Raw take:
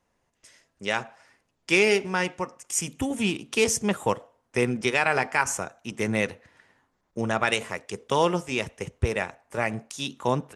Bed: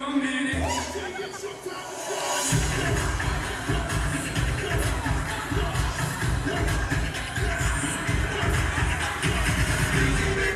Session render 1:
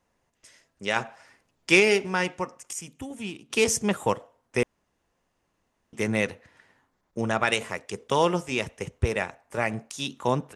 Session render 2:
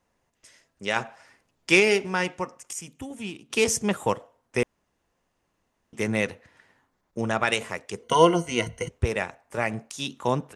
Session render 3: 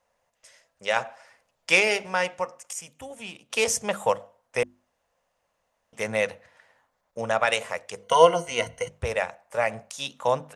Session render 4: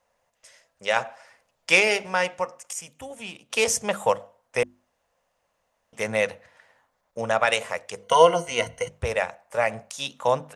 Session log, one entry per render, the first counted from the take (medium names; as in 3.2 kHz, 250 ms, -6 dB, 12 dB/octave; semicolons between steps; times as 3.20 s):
0.96–1.80 s: gain +3 dB; 2.73–3.50 s: gain -9.5 dB; 4.63–5.93 s: room tone
8.03–8.89 s: rippled EQ curve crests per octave 1.9, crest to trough 16 dB
resonant low shelf 440 Hz -6.5 dB, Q 3; hum notches 50/100/150/200/250/300/350 Hz
trim +1.5 dB; peak limiter -3 dBFS, peak gain reduction 2 dB